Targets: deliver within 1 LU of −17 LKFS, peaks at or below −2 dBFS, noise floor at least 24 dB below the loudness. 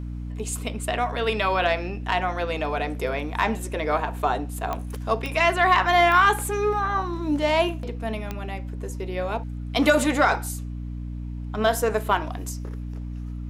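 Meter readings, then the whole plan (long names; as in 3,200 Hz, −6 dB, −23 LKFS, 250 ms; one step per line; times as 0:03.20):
number of clicks 4; mains hum 60 Hz; hum harmonics up to 300 Hz; level of the hum −30 dBFS; integrated loudness −24.0 LKFS; sample peak −7.0 dBFS; target loudness −17.0 LKFS
→ click removal
mains-hum notches 60/120/180/240/300 Hz
level +7 dB
brickwall limiter −2 dBFS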